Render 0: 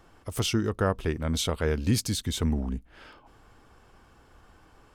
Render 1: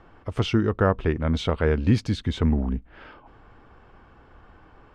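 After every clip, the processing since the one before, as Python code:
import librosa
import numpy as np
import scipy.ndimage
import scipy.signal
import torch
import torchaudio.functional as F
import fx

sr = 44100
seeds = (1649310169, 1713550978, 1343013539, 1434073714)

y = scipy.signal.sosfilt(scipy.signal.butter(2, 2500.0, 'lowpass', fs=sr, output='sos'), x)
y = y * librosa.db_to_amplitude(5.0)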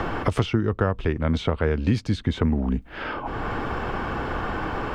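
y = fx.band_squash(x, sr, depth_pct=100)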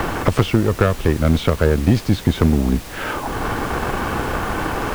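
y = fx.cheby_harmonics(x, sr, harmonics=(6,), levels_db=(-19,), full_scale_db=-6.5)
y = fx.dmg_noise_colour(y, sr, seeds[0], colour='pink', level_db=-40.0)
y = y * librosa.db_to_amplitude(5.5)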